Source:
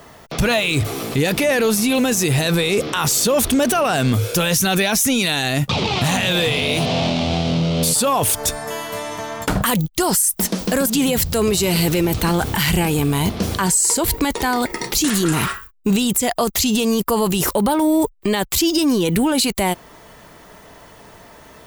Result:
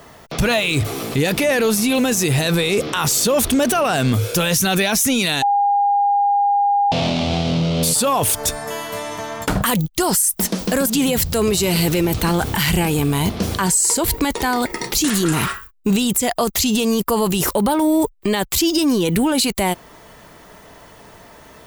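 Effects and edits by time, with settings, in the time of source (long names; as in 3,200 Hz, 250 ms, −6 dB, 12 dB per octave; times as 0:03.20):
0:05.42–0:06.92: beep over 810 Hz −13 dBFS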